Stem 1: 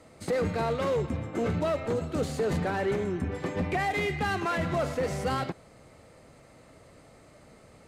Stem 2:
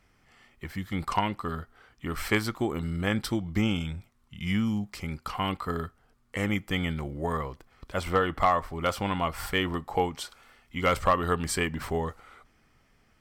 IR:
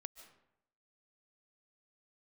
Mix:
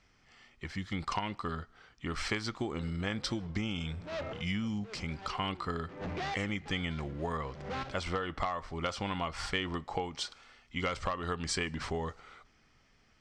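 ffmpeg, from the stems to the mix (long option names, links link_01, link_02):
-filter_complex "[0:a]lowpass=1800,asoftclip=type=hard:threshold=-32.5dB,adelay=2450,volume=-2.5dB[link_01];[1:a]acompressor=threshold=-27dB:ratio=12,volume=-4dB,asplit=3[link_02][link_03][link_04];[link_03]volume=-15.5dB[link_05];[link_04]apad=whole_len=455245[link_06];[link_01][link_06]sidechaincompress=threshold=-57dB:ratio=6:attack=41:release=147[link_07];[2:a]atrim=start_sample=2205[link_08];[link_05][link_08]afir=irnorm=-1:irlink=0[link_09];[link_07][link_02][link_09]amix=inputs=3:normalize=0,lowpass=frequency=6200:width=0.5412,lowpass=frequency=6200:width=1.3066,highshelf=frequency=3600:gain=10"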